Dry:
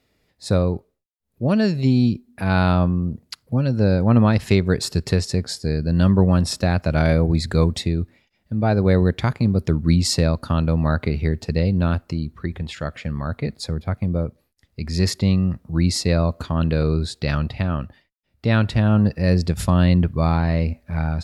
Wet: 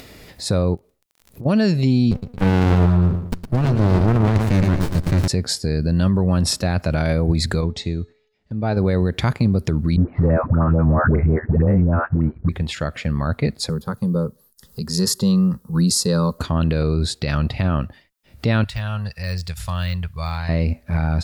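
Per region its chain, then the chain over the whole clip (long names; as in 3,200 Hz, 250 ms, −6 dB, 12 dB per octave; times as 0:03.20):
0:00.74–0:01.45: notch filter 1,600 Hz, Q 21 + downward compressor, threshold −40 dBFS + surface crackle 23 per second −53 dBFS
0:02.11–0:05.28: parametric band 1,100 Hz +5.5 dB 1.4 octaves + repeating echo 112 ms, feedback 38%, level −9.5 dB + windowed peak hold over 65 samples
0:07.61–0:08.77: low-pass filter 6,800 Hz 24 dB per octave + noise gate −50 dBFS, range −11 dB + tuned comb filter 430 Hz, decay 0.57 s
0:09.96–0:12.49: all-pass dispersion highs, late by 122 ms, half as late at 500 Hz + leveller curve on the samples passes 1 + Butterworth low-pass 1,700 Hz
0:13.69–0:16.39: high-shelf EQ 7,400 Hz +11.5 dB + phaser with its sweep stopped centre 450 Hz, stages 8
0:18.64–0:20.49: de-essing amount 85% + guitar amp tone stack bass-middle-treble 10-0-10
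whole clip: high-shelf EQ 7,900 Hz +4 dB; brickwall limiter −14.5 dBFS; upward compression, threshold −32 dBFS; level +5 dB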